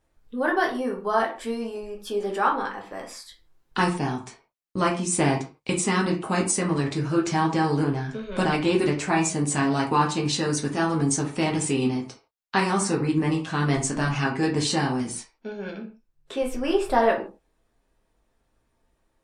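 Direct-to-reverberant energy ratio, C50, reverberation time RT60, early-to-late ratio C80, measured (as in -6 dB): -1.0 dB, 9.5 dB, not exponential, 14.5 dB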